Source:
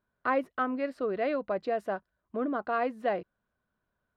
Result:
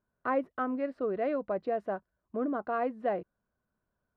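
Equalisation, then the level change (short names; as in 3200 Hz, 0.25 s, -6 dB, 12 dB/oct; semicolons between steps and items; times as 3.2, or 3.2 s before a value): LPF 1100 Hz 6 dB/oct; 0.0 dB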